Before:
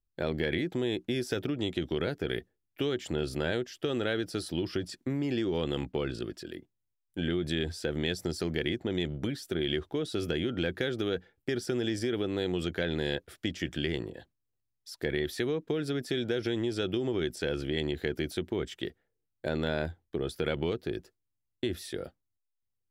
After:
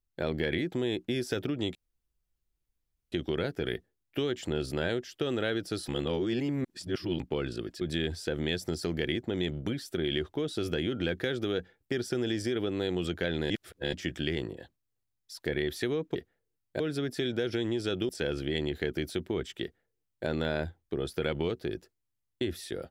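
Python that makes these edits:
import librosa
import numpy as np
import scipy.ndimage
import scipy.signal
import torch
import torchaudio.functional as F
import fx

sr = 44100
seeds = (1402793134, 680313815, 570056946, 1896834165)

y = fx.edit(x, sr, fx.insert_room_tone(at_s=1.75, length_s=1.37),
    fx.reverse_span(start_s=4.51, length_s=1.32),
    fx.cut(start_s=6.44, length_s=0.94),
    fx.reverse_span(start_s=13.07, length_s=0.43),
    fx.cut(start_s=17.01, length_s=0.3),
    fx.duplicate(start_s=18.84, length_s=0.65, to_s=15.72), tone=tone)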